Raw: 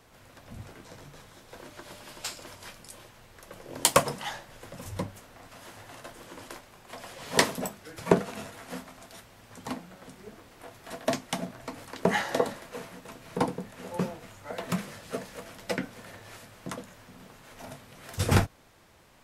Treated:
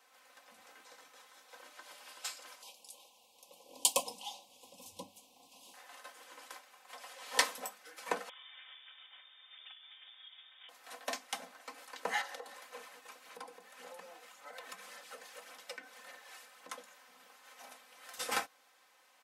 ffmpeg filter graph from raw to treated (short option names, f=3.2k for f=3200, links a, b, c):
-filter_complex "[0:a]asettb=1/sr,asplit=3[a][b][c];[a]atrim=end=2.624[d];[b]atrim=start=2.62:end=5.74,asetpts=PTS-STARTPTS,afade=t=in:d=0.004:c=qsin,afade=t=out:st=3.116:d=0.004:c=qsin,asuperstop=centerf=1600:order=8:qfactor=1,asubboost=boost=9:cutoff=210[e];[c]atrim=start=5.736[f];[d][e]acrossfade=d=0.004:c1=hsin:c2=qsin[g];[g][f]acrossfade=d=0.004:c1=qsin:c2=hsin,asettb=1/sr,asplit=3[h][i][j];[h]atrim=end=8.294[k];[i]atrim=start=8.29:end=10.69,asetpts=PTS-STARTPTS,afade=t=in:d=0.004:c=qsin,afade=t=out:st=2.396:d=0.004:c=qsin,equalizer=f=1k:w=4.6:g=-13.5,acompressor=threshold=-43dB:ratio=6:attack=3.2:release=140:knee=1:detection=peak,lowpass=f=3.1k:t=q:w=0.5098,lowpass=f=3.1k:t=q:w=0.6013,lowpass=f=3.1k:t=q:w=0.9,lowpass=f=3.1k:t=q:w=2.563,afreqshift=-3700[l];[j]atrim=start=10.686[m];[k][l]acrossfade=d=0.004:c1=hsin:c2=qsin[n];[n][m]acrossfade=d=0.004:c1=qsin:c2=hsin,asettb=1/sr,asplit=3[o][p][q];[o]atrim=end=12.214[r];[p]atrim=start=12.21:end=16.7,asetpts=PTS-STARTPTS,afade=t=in:d=0.004:c=qsin,afade=t=out:st=4.486:d=0.004:c=qsin,acompressor=threshold=-37dB:ratio=3:attack=3.2:release=140:knee=1:detection=peak,aphaser=in_gain=1:out_gain=1:delay=2.8:decay=0.33:speed=1.8:type=sinusoidal[s];[q]atrim=start=16.696[t];[r][s]acrossfade=d=0.004:c1=hsin:c2=qsin[u];[u][t]acrossfade=d=0.004:c1=qsin:c2=hsin,highpass=740,aecho=1:1:3.9:0.77,volume=-7dB"